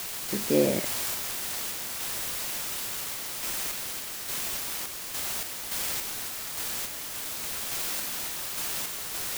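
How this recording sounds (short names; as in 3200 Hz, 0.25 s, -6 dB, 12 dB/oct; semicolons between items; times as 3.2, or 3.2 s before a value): a quantiser's noise floor 6-bit, dither triangular; random-step tremolo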